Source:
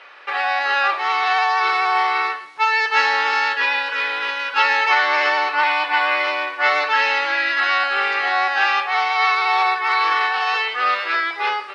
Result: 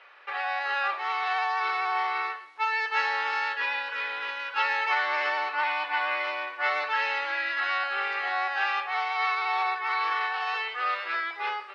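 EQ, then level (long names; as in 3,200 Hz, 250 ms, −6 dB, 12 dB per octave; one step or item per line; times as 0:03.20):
bass and treble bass −9 dB, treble −6 dB
low-shelf EQ 210 Hz −5 dB
−9.0 dB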